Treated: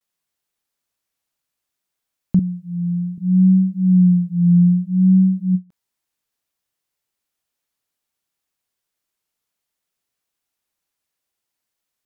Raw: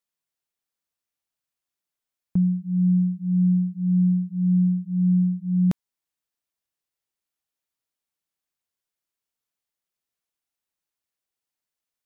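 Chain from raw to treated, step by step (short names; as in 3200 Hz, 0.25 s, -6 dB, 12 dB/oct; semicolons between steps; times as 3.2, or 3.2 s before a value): vibrato 0.62 Hz 66 cents; 2.39–3.18 HPF 480 Hz 6 dB/oct; ending taper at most 400 dB/s; gain +7 dB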